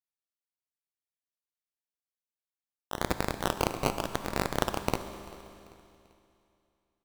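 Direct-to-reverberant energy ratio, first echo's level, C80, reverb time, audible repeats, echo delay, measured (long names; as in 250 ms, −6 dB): 8.5 dB, −21.5 dB, 10.5 dB, 2.7 s, 2, 391 ms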